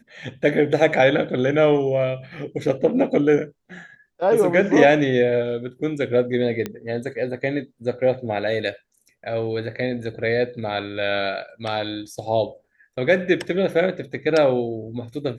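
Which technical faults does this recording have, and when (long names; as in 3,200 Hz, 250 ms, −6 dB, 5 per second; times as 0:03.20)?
0:06.66: click −13 dBFS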